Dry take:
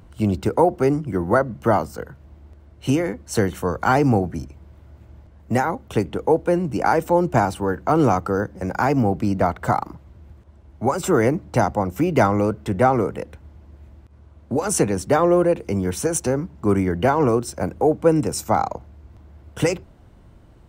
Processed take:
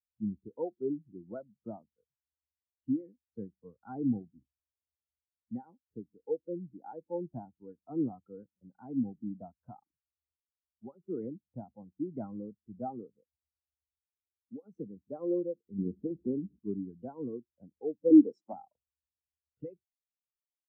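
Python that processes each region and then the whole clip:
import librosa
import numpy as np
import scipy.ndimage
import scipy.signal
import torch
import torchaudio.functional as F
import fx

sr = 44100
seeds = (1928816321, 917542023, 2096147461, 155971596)

y = fx.chain(x, sr, fx.lowpass_res(hz=380.0, q=2.2),
    fx.peak_eq(hz=200.0, db=6.5, octaves=0.26),
    fx.spectral_comp(ratio=2.0), at=(15.78, 16.59))
y = fx.chain(y, sr, fx.highpass(hz=280.0, slope=12),
    fx.leveller(passes=3), at=(18.1, 18.53))
y = scipy.signal.sosfilt(scipy.signal.butter(2, 4800.0, 'lowpass', fs=sr, output='sos'), y)
y = fx.dynamic_eq(y, sr, hz=240.0, q=1.1, threshold_db=-33.0, ratio=4.0, max_db=6)
y = fx.spectral_expand(y, sr, expansion=2.5)
y = F.gain(torch.from_numpy(y), -8.0).numpy()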